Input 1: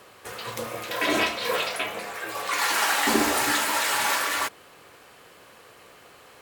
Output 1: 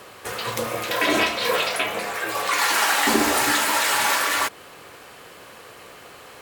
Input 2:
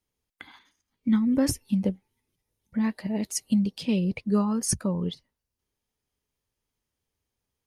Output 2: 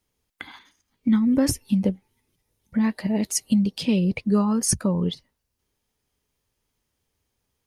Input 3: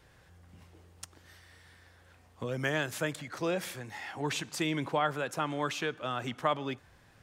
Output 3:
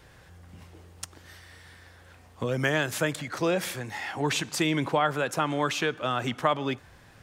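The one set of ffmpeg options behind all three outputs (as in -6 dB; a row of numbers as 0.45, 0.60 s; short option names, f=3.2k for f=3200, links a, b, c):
-af "acompressor=threshold=-30dB:ratio=1.5,volume=7dB"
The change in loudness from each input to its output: +3.5, +4.0, +5.5 LU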